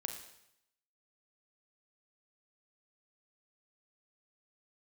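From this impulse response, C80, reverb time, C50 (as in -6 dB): 9.5 dB, 0.80 s, 7.5 dB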